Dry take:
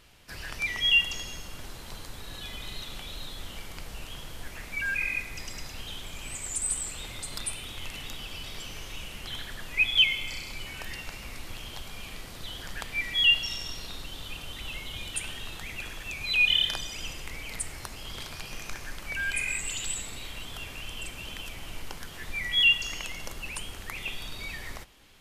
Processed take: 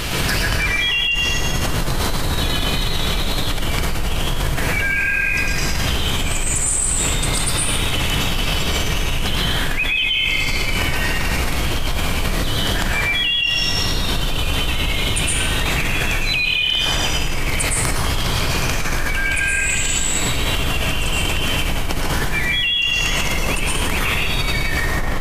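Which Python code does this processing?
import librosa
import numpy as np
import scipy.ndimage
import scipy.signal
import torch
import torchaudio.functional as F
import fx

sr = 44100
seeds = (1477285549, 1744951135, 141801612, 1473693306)

y = fx.peak_eq(x, sr, hz=160.0, db=3.0, octaves=1.9)
y = fx.rev_plate(y, sr, seeds[0], rt60_s=1.6, hf_ratio=0.4, predelay_ms=100, drr_db=-7.0)
y = fx.env_flatten(y, sr, amount_pct=100)
y = F.gain(torch.from_numpy(y), -7.0).numpy()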